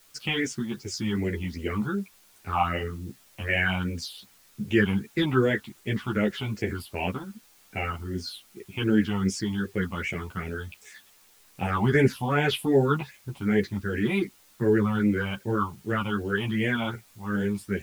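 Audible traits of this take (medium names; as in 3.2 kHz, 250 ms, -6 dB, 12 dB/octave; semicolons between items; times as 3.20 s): phasing stages 6, 2.6 Hz, lowest notch 430–1200 Hz; a quantiser's noise floor 10-bit, dither triangular; a shimmering, thickened sound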